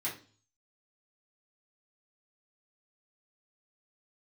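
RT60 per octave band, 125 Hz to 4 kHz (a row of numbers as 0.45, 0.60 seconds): 0.70, 0.50, 0.45, 0.35, 0.35, 0.45 seconds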